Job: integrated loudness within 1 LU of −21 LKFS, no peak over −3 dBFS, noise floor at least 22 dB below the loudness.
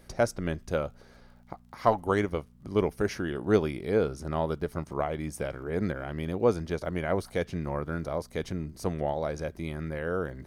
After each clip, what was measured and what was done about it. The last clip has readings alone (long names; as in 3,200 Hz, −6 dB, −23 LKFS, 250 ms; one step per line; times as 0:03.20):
crackle rate 38 per second; mains hum 60 Hz; hum harmonics up to 240 Hz; level of the hum −53 dBFS; integrated loudness −30.5 LKFS; sample peak −8.0 dBFS; target loudness −21.0 LKFS
→ click removal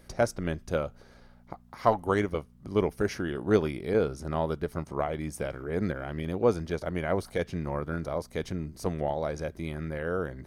crackle rate 0.19 per second; mains hum 60 Hz; hum harmonics up to 240 Hz; level of the hum −53 dBFS
→ hum removal 60 Hz, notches 4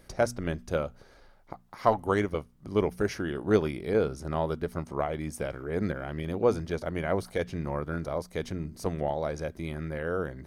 mains hum none found; integrated loudness −31.0 LKFS; sample peak −8.0 dBFS; target loudness −21.0 LKFS
→ level +10 dB
brickwall limiter −3 dBFS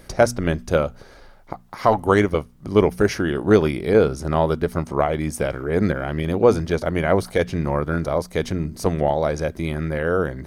integrated loudness −21.0 LKFS; sample peak −3.0 dBFS; background noise floor −46 dBFS